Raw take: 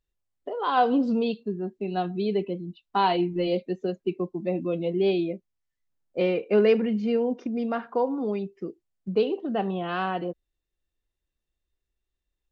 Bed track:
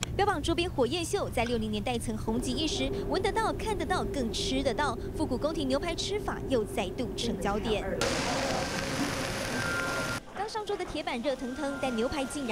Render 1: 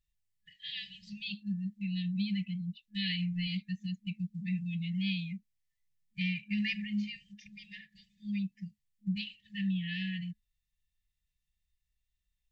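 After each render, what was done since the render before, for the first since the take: FFT band-reject 210–1700 Hz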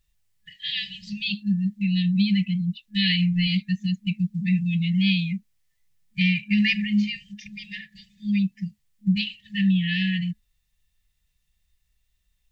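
gain +12 dB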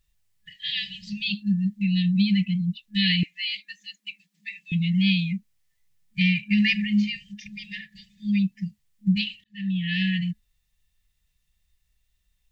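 3.23–4.72 elliptic high-pass 290 Hz; 9.44–10.01 fade in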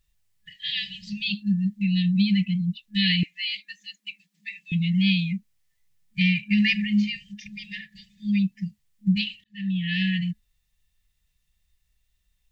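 nothing audible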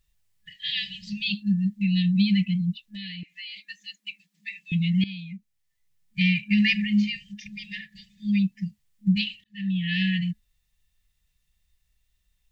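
2.81–3.57 compressor 4:1, threshold -37 dBFS; 5.04–6.35 fade in, from -18.5 dB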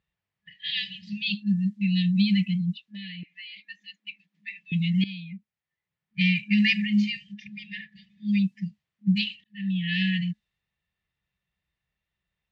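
low-pass opened by the level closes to 2200 Hz, open at -17.5 dBFS; HPF 130 Hz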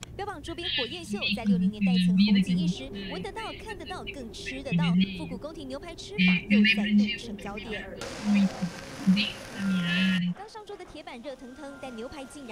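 add bed track -8.5 dB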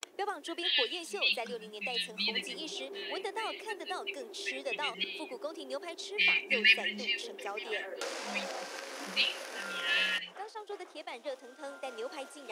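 expander -40 dBFS; inverse Chebyshev high-pass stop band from 170 Hz, stop band 40 dB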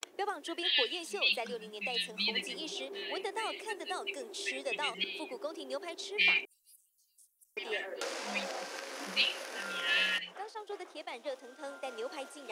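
3.31–4.98 bell 8100 Hz +6.5 dB 0.41 oct; 6.45–7.57 inverse Chebyshev band-stop 150–2100 Hz, stop band 80 dB

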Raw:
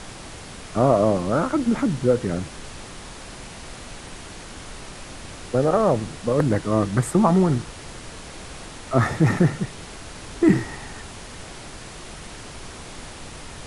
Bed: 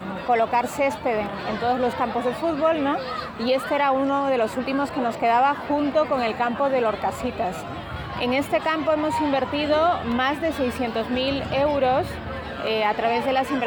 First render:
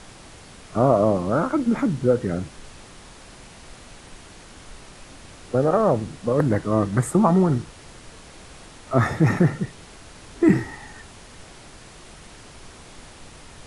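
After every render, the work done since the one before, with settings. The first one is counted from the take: noise print and reduce 6 dB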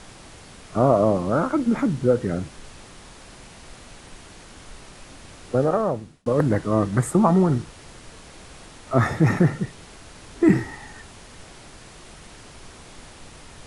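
5.6–6.26 fade out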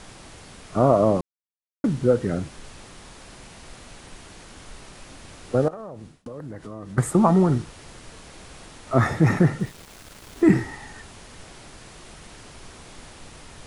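1.21–1.84 mute; 5.68–6.98 compressor, threshold -34 dBFS; 9.6–10.46 sample gate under -42 dBFS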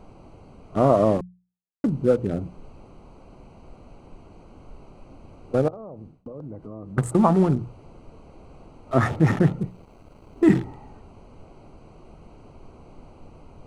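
Wiener smoothing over 25 samples; notches 60/120/180 Hz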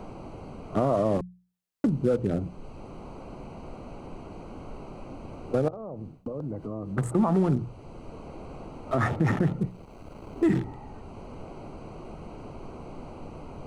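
limiter -13 dBFS, peak gain reduction 8 dB; three-band squash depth 40%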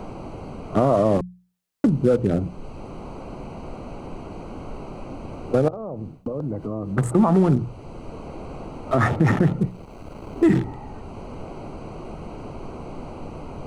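gain +6 dB

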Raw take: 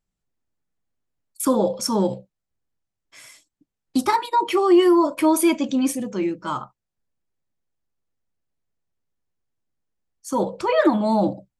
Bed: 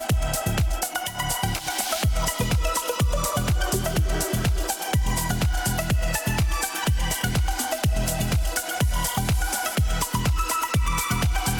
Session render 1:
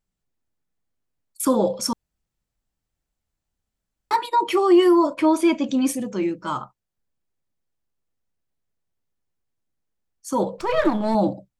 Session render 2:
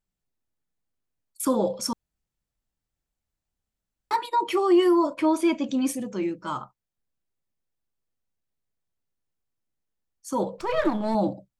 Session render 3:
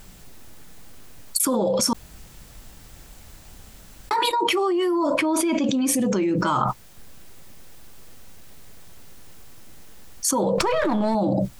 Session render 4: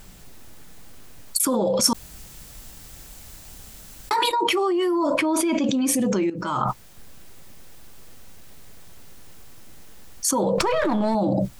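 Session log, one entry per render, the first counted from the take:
1.93–4.11 room tone; 5.13–5.68 air absorption 78 m; 10.58–11.15 half-wave gain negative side -7 dB
gain -4 dB
limiter -18 dBFS, peak gain reduction 6.5 dB; fast leveller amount 100%
1.84–4.24 high shelf 4000 Hz +7 dB; 6.3–6.7 fade in, from -14.5 dB

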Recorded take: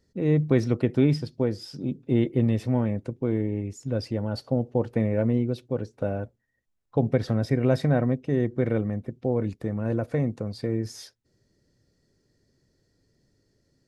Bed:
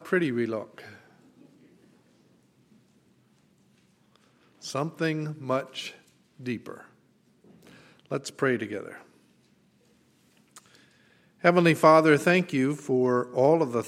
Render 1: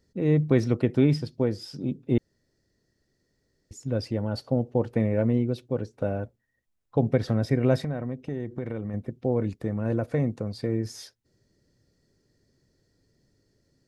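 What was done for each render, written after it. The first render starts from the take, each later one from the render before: 2.18–3.71 room tone; 7.8–8.94 compressor 4:1, threshold -28 dBFS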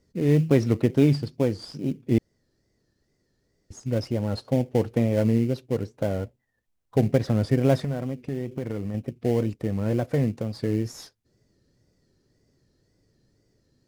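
in parallel at -11.5 dB: sample-rate reducer 2600 Hz, jitter 20%; on the sum: wow and flutter 100 cents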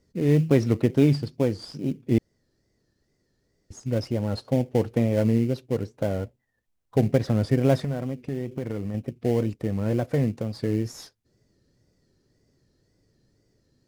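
nothing audible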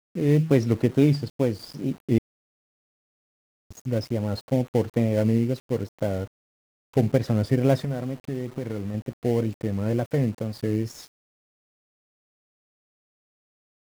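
sample gate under -43 dBFS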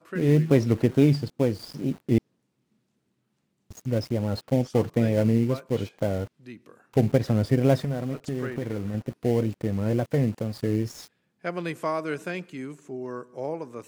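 add bed -11 dB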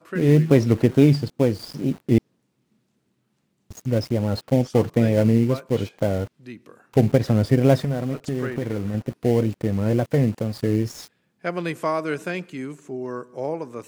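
gain +4 dB; limiter -3 dBFS, peak gain reduction 1 dB

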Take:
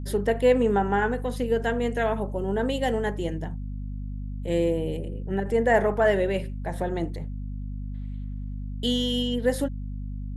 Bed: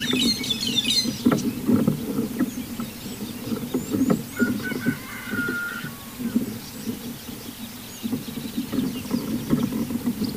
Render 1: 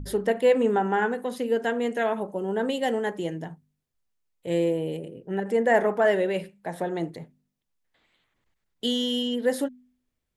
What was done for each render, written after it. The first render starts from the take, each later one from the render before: de-hum 50 Hz, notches 5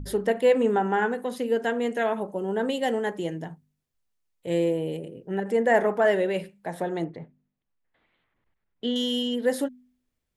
7.04–8.96 LPF 2400 Hz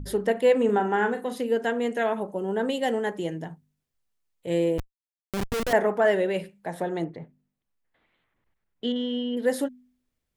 0.65–1.41 doubler 39 ms -8.5 dB; 4.78–5.73 Schmitt trigger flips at -24.5 dBFS; 8.92–9.37 air absorption 410 m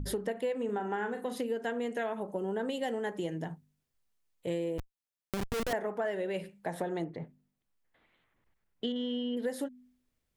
compressor 6:1, threshold -31 dBFS, peak gain reduction 15 dB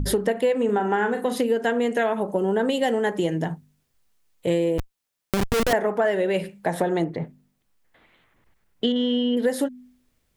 gain +11.5 dB

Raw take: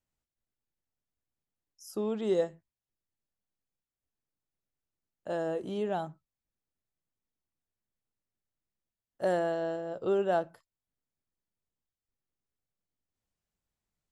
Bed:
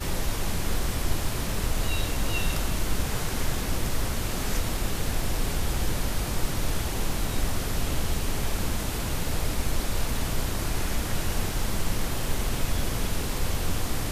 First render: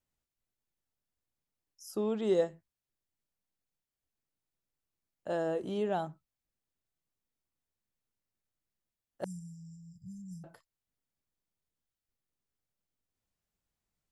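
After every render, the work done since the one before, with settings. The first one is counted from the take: 9.24–10.44 brick-wall FIR band-stop 200–4800 Hz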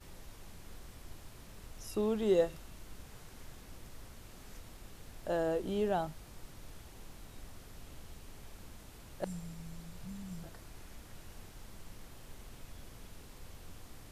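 add bed -23.5 dB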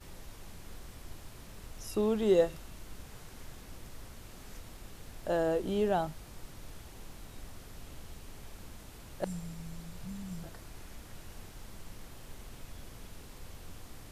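gain +3 dB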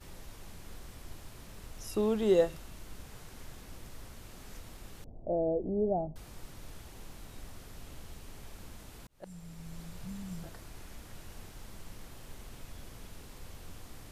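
5.04–6.16 Chebyshev low-pass 710 Hz, order 4; 9.07–9.82 fade in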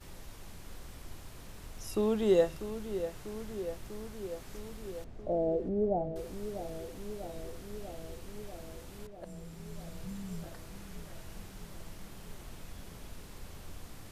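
darkening echo 0.644 s, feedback 74%, low-pass 3000 Hz, level -10.5 dB

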